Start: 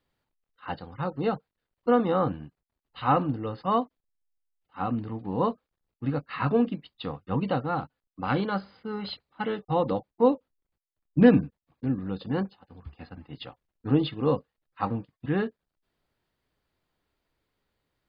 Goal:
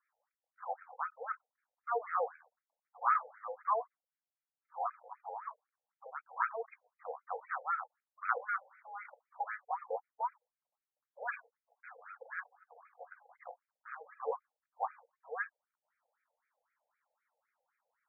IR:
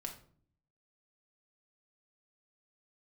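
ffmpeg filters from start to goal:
-filter_complex "[0:a]acrossover=split=410|1100[link_01][link_02][link_03];[link_02]acompressor=threshold=-42dB:ratio=16[link_04];[link_01][link_04][link_03]amix=inputs=3:normalize=0,afreqshift=-24,afftfilt=real='re*between(b*sr/1024,610*pow(1800/610,0.5+0.5*sin(2*PI*3.9*pts/sr))/1.41,610*pow(1800/610,0.5+0.5*sin(2*PI*3.9*pts/sr))*1.41)':imag='im*between(b*sr/1024,610*pow(1800/610,0.5+0.5*sin(2*PI*3.9*pts/sr))/1.41,610*pow(1800/610,0.5+0.5*sin(2*PI*3.9*pts/sr))*1.41)':win_size=1024:overlap=0.75,volume=3dB"

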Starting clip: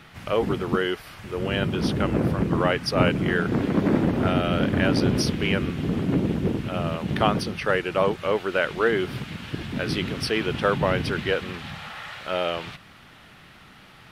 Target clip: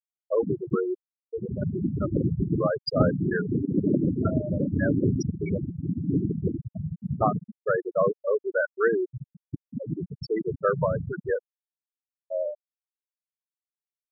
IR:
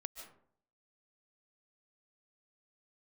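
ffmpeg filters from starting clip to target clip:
-af "adynamicequalizer=threshold=0.0141:dfrequency=220:dqfactor=3.5:tfrequency=220:tqfactor=3.5:attack=5:release=100:ratio=0.375:range=2:mode=cutabove:tftype=bell,afftfilt=real='re*gte(hypot(re,im),0.282)':imag='im*gte(hypot(re,im),0.282)':win_size=1024:overlap=0.75"

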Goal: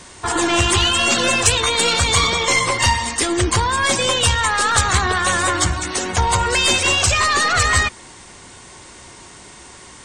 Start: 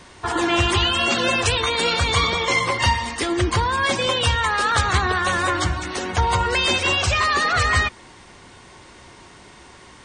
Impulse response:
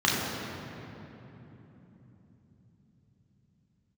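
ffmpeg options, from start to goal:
-af "acontrast=81,aeval=exprs='0.75*(cos(1*acos(clip(val(0)/0.75,-1,1)))-cos(1*PI/2))+0.133*(cos(2*acos(clip(val(0)/0.75,-1,1)))-cos(2*PI/2))':channel_layout=same,equalizer=frequency=8000:width_type=o:width=0.98:gain=11,volume=-4.5dB"

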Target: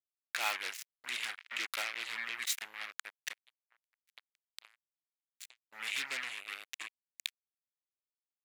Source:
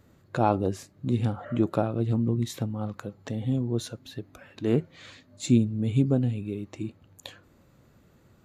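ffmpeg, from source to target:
ffmpeg -i in.wav -filter_complex "[0:a]aemphasis=mode=production:type=cd,agate=range=-7dB:threshold=-46dB:ratio=16:detection=peak,asplit=3[link_01][link_02][link_03];[link_01]afade=type=out:start_time=3.32:duration=0.02[link_04];[link_02]acompressor=threshold=-39dB:ratio=20,afade=type=in:start_time=3.32:duration=0.02,afade=type=out:start_time=5.71:duration=0.02[link_05];[link_03]afade=type=in:start_time=5.71:duration=0.02[link_06];[link_04][link_05][link_06]amix=inputs=3:normalize=0,acrusher=bits=4:mix=0:aa=0.5,highpass=frequency=2100:width_type=q:width=2.4" out.wav

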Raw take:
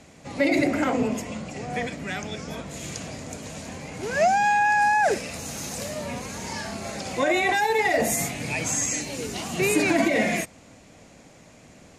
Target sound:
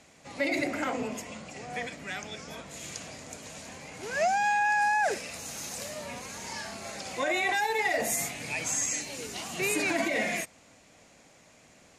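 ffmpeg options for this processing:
ffmpeg -i in.wav -af "lowshelf=frequency=480:gain=-9,volume=-3.5dB" out.wav

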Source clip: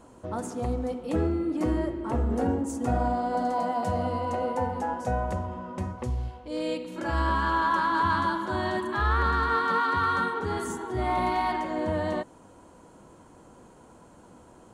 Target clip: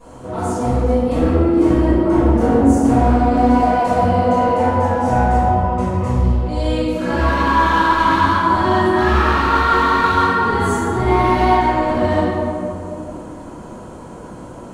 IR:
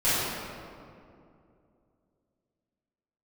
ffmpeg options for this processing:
-filter_complex "[0:a]asplit=2[link_01][link_02];[link_02]acompressor=threshold=-40dB:ratio=6,volume=-0.5dB[link_03];[link_01][link_03]amix=inputs=2:normalize=0,asoftclip=type=hard:threshold=-21dB[link_04];[1:a]atrim=start_sample=2205[link_05];[link_04][link_05]afir=irnorm=-1:irlink=0,volume=-5dB"

